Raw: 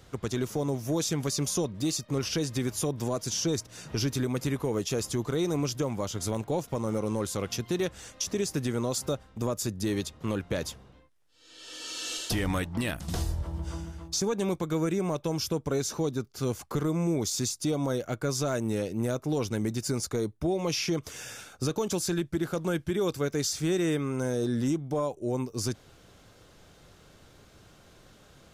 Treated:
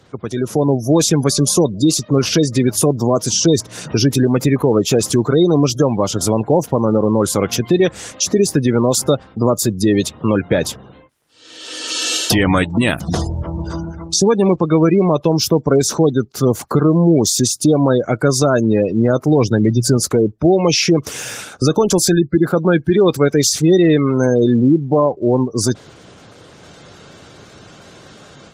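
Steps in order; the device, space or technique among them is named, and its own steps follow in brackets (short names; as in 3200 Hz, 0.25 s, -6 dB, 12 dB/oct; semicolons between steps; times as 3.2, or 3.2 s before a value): 19.27–19.97 dynamic EQ 120 Hz, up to +7 dB, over -49 dBFS, Q 6.3; noise-suppressed video call (HPF 110 Hz 12 dB/oct; spectral gate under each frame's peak -25 dB strong; AGC gain up to 9 dB; gain +7 dB; Opus 24 kbps 48000 Hz)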